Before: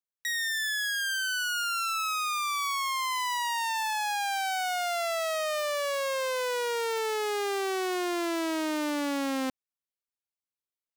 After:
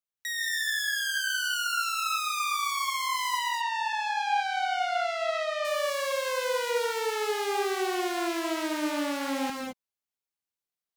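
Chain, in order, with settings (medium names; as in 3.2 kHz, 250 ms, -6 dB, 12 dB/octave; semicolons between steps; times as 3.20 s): 3.39–5.65 s: low-pass 3.9 kHz 12 dB/octave; gated-style reverb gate 240 ms rising, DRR 0 dB; trim -2 dB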